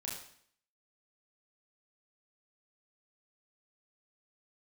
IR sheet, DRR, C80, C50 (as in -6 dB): -4.0 dB, 7.0 dB, 3.5 dB